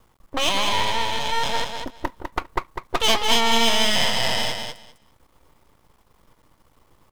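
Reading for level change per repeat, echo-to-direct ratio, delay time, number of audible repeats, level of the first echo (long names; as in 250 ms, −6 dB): −16.5 dB, −6.0 dB, 201 ms, 2, −6.0 dB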